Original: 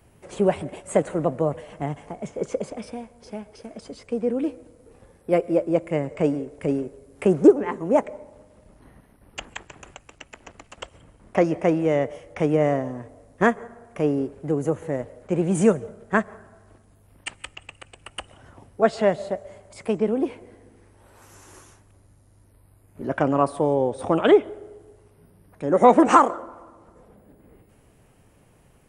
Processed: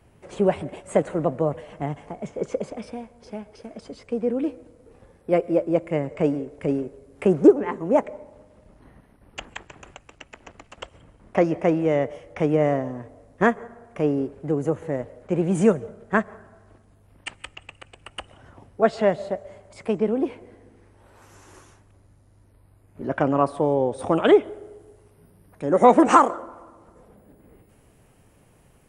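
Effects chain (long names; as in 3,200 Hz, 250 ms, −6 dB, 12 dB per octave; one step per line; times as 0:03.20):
high-shelf EQ 8,300 Hz −10.5 dB, from 0:23.92 +2 dB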